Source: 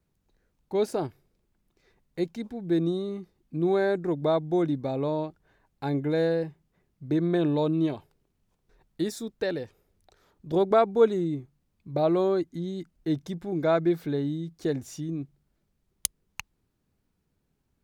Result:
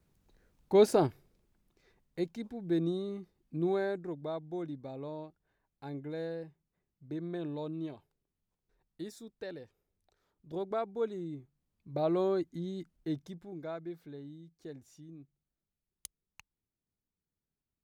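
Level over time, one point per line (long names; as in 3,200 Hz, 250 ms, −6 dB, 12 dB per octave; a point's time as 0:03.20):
0:01.04 +3 dB
0:02.24 −5.5 dB
0:03.63 −5.5 dB
0:04.25 −13.5 dB
0:11.02 −13.5 dB
0:12.22 −5.5 dB
0:12.95 −5.5 dB
0:13.77 −18 dB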